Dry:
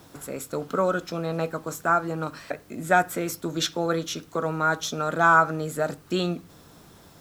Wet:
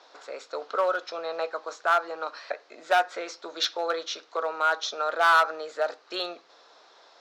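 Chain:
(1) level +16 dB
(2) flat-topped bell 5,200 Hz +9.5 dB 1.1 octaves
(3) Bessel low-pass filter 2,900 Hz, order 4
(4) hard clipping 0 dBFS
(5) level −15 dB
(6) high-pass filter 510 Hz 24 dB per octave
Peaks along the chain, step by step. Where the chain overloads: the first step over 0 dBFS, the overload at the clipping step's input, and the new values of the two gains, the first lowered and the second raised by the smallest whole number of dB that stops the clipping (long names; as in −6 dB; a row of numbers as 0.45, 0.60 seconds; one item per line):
+9.5, +11.0, +9.0, 0.0, −15.0, −9.5 dBFS
step 1, 9.0 dB
step 1 +7 dB, step 5 −6 dB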